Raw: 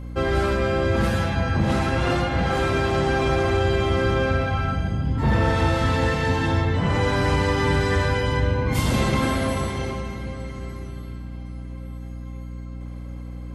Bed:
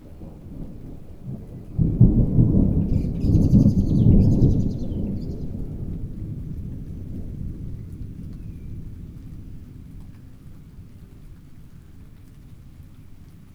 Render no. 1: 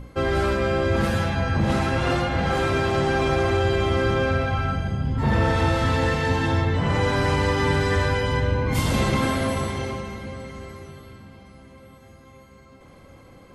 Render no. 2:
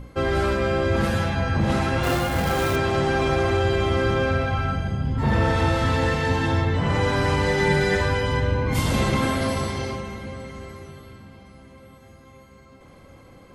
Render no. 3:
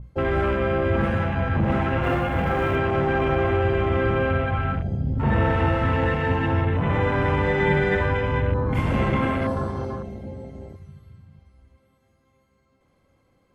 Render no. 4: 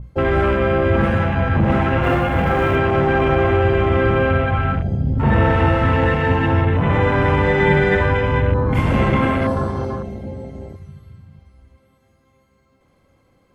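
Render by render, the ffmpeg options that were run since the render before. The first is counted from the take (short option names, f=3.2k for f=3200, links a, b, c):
-af "bandreject=f=60:t=h:w=6,bandreject=f=120:t=h:w=6,bandreject=f=180:t=h:w=6,bandreject=f=240:t=h:w=6,bandreject=f=300:t=h:w=6,bandreject=f=360:t=h:w=6"
-filter_complex "[0:a]asettb=1/sr,asplit=3[a][b][c];[a]atrim=end=2.034[d];[b]atrim=start=2.03:end=2.76,asetpts=PTS-STARTPTS,afade=t=in:d=0.004:c=qsin,afade=t=out:st=0.726:d=0.004:c=qsin,acrusher=bits=3:mode=log:mix=0:aa=0.000001[e];[c]atrim=start=2.756[f];[d][e]acrossfade=d=0.004:c1=hsin:c2=qsin[g];[g][f]acrossfade=d=0.004:c1=qsin:c2=hsin,asettb=1/sr,asplit=3[h][i][j];[h]atrim=end=7.464[k];[i]atrim=start=7.46:end=8.01,asetpts=PTS-STARTPTS,afade=t=in:d=0.004:c=qsin,afade=t=out:st=0.546:d=0.004:c=qsin,aecho=1:1:5.5:0.74,atrim=end_sample=24255[l];[j]atrim=start=8.006[m];[k][l]acrossfade=d=0.004:c1=hsin:c2=qsin[n];[n][m]acrossfade=d=0.004:c1=qsin:c2=hsin,asettb=1/sr,asplit=3[o][p][q];[o]atrim=end=9.414[r];[p]atrim=start=9.41:end=9.96,asetpts=PTS-STARTPTS,afade=t=in:d=0.004:c=qsin,afade=t=out:st=0.546:d=0.004:c=qsin,equalizer=f=4.9k:t=o:w=0.38:g=8[s];[q]atrim=start=9.956[t];[r][s]acrossfade=d=0.004:c1=hsin:c2=qsin[u];[u][t]acrossfade=d=0.004:c1=qsin:c2=hsin"
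-af "afwtdn=0.0316,adynamicequalizer=threshold=0.00794:dfrequency=4000:dqfactor=0.7:tfrequency=4000:tqfactor=0.7:attack=5:release=100:ratio=0.375:range=2:mode=cutabove:tftype=highshelf"
-af "volume=5.5dB"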